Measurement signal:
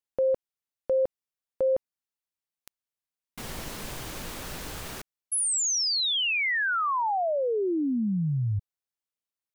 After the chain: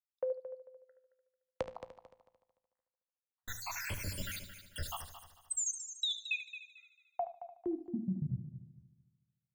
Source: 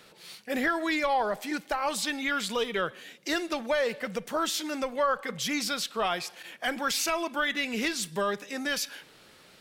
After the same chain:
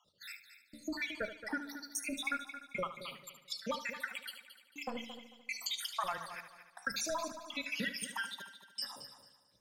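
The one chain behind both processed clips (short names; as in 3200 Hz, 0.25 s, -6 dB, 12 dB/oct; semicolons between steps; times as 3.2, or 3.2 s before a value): random spectral dropouts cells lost 81%; notches 60/120/180/240/300 Hz; gate -56 dBFS, range -20 dB; fifteen-band EQ 100 Hz +6 dB, 400 Hz -10 dB, 1000 Hz +6 dB; compressor 5:1, threshold -41 dBFS; frequency shift -13 Hz; flange 0.25 Hz, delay 10 ms, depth 8.9 ms, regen +82%; step gate "xx..xxx.xxx" 82 bpm -60 dB; multi-head echo 74 ms, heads first and third, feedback 44%, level -12 dB; gain +10.5 dB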